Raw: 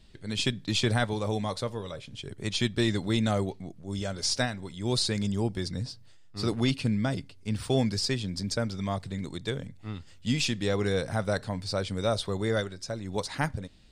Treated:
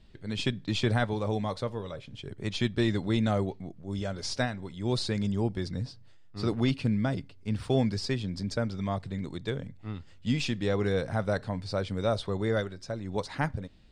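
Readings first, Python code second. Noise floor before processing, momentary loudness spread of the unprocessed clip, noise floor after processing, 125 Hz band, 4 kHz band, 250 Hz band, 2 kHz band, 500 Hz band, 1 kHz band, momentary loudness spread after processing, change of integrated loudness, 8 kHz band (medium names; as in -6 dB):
-51 dBFS, 10 LU, -51 dBFS, 0.0 dB, -5.5 dB, 0.0 dB, -2.0 dB, 0.0 dB, -0.5 dB, 10 LU, -1.0 dB, -9.0 dB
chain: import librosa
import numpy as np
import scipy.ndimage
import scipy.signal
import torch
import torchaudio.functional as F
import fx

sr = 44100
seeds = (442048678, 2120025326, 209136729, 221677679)

y = fx.lowpass(x, sr, hz=2500.0, slope=6)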